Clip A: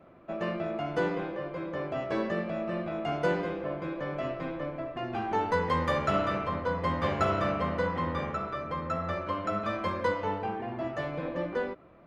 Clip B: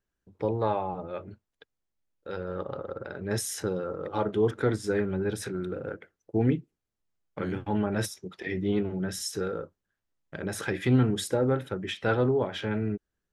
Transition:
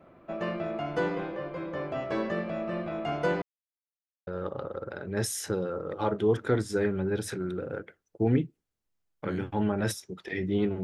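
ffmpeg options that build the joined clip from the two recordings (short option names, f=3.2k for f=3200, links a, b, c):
-filter_complex "[0:a]apad=whole_dur=10.83,atrim=end=10.83,asplit=2[a][b];[a]atrim=end=3.42,asetpts=PTS-STARTPTS,afade=t=out:st=3.416:d=0.004:c=hsin[c];[b]atrim=start=3.42:end=4.27,asetpts=PTS-STARTPTS,volume=0[d];[1:a]atrim=start=2.41:end=8.97,asetpts=PTS-STARTPTS,afade=t=in:d=0.004:c=hsin[e];[c][d][e]concat=n=3:v=0:a=1"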